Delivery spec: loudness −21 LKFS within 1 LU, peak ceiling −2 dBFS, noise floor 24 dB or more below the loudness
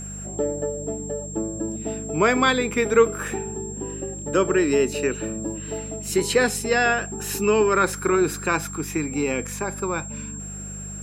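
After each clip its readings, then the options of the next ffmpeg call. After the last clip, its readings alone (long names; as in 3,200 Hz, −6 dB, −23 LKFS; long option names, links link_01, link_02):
mains hum 50 Hz; hum harmonics up to 200 Hz; level of the hum −35 dBFS; interfering tone 7,500 Hz; level of the tone −35 dBFS; integrated loudness −23.5 LKFS; sample peak −5.0 dBFS; target loudness −21.0 LKFS
→ -af "bandreject=frequency=50:width_type=h:width=4,bandreject=frequency=100:width_type=h:width=4,bandreject=frequency=150:width_type=h:width=4,bandreject=frequency=200:width_type=h:width=4"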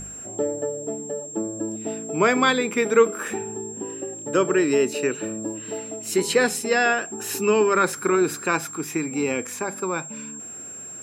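mains hum none found; interfering tone 7,500 Hz; level of the tone −35 dBFS
→ -af "bandreject=frequency=7500:width=30"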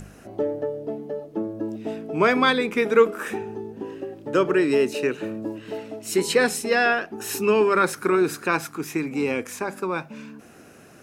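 interfering tone none found; integrated loudness −23.5 LKFS; sample peak −5.5 dBFS; target loudness −21.0 LKFS
→ -af "volume=2.5dB"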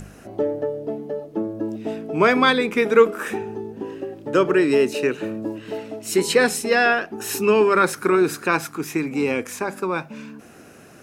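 integrated loudness −21.0 LKFS; sample peak −3.0 dBFS; background noise floor −46 dBFS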